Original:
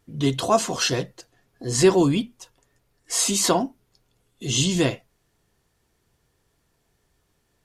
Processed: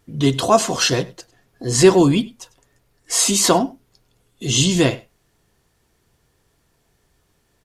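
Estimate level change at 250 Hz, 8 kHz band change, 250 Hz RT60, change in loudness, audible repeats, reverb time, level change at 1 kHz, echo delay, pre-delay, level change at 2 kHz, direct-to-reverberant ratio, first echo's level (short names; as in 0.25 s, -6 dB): +5.0 dB, +5.0 dB, none, +5.0 dB, 1, none, +5.0 dB, 99 ms, none, +5.0 dB, none, -22.0 dB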